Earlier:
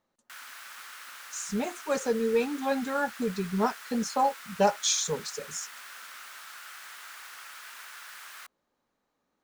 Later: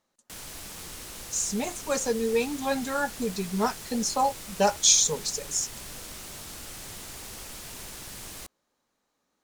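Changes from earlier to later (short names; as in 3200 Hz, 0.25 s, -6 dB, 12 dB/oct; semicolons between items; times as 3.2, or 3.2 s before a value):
background: remove resonant high-pass 1400 Hz, resonance Q 2.7; master: add bell 8700 Hz +9.5 dB 2.3 oct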